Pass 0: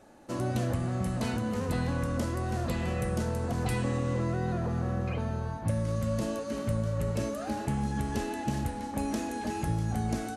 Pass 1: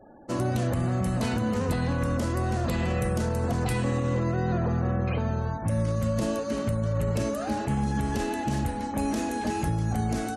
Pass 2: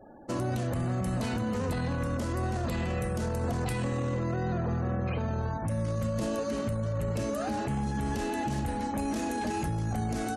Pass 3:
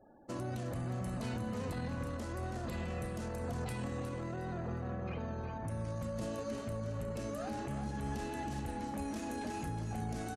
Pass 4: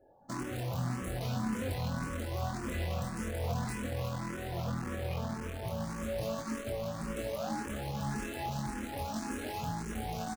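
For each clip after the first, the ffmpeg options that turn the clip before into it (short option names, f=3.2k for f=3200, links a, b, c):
-af "alimiter=limit=-23dB:level=0:latency=1:release=27,afftfilt=real='re*gte(hypot(re,im),0.002)':imag='im*gte(hypot(re,im),0.002)':win_size=1024:overlap=0.75,volume=5dB"
-af "alimiter=limit=-23.5dB:level=0:latency=1:release=16"
-af "asoftclip=type=tanh:threshold=-28dB,aeval=exprs='0.0376*(cos(1*acos(clip(val(0)/0.0376,-1,1)))-cos(1*PI/2))+0.0075*(cos(3*acos(clip(val(0)/0.0376,-1,1)))-cos(3*PI/2))+0.00119*(cos(5*acos(clip(val(0)/0.0376,-1,1)))-cos(5*PI/2))':c=same,aecho=1:1:361|722|1083:0.355|0.0993|0.0278,volume=-5dB"
-filter_complex "[0:a]asplit=2[a][b];[b]acrusher=bits=5:mix=0:aa=0.000001,volume=-5dB[c];[a][c]amix=inputs=2:normalize=0,asplit=2[d][e];[e]adelay=23,volume=-4dB[f];[d][f]amix=inputs=2:normalize=0,asplit=2[g][h];[h]afreqshift=1.8[i];[g][i]amix=inputs=2:normalize=1"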